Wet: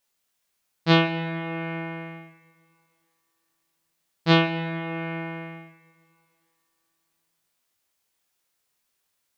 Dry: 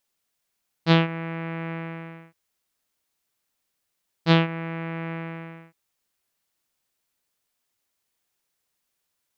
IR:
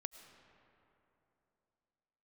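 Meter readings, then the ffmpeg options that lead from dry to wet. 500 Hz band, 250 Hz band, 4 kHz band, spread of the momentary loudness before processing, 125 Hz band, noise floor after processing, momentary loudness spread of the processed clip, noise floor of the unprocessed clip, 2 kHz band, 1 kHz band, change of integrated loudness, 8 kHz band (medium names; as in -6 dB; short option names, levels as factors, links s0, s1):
+1.5 dB, +0.5 dB, +2.5 dB, 18 LU, -1.5 dB, -76 dBFS, 19 LU, -79 dBFS, +3.0 dB, +2.0 dB, +1.0 dB, no reading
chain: -filter_complex "[0:a]asplit=2[s0][s1];[1:a]atrim=start_sample=2205,lowshelf=f=280:g=-11,adelay=21[s2];[s1][s2]afir=irnorm=-1:irlink=0,volume=1.41[s3];[s0][s3]amix=inputs=2:normalize=0"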